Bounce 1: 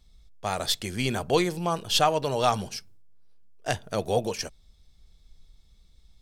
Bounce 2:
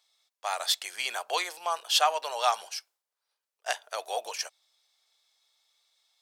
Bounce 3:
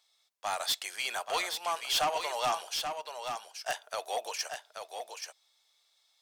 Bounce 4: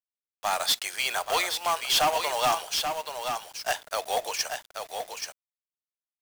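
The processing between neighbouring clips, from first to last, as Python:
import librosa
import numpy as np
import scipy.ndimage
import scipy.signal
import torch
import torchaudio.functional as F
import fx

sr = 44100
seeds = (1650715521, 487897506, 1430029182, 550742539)

y1 = scipy.signal.sosfilt(scipy.signal.butter(4, 700.0, 'highpass', fs=sr, output='sos'), x)
y2 = 10.0 ** (-24.0 / 20.0) * np.tanh(y1 / 10.0 ** (-24.0 / 20.0))
y2 = y2 + 10.0 ** (-6.5 / 20.0) * np.pad(y2, (int(831 * sr / 1000.0), 0))[:len(y2)]
y3 = fx.quant_companded(y2, sr, bits=4)
y3 = y3 * 10.0 ** (5.5 / 20.0)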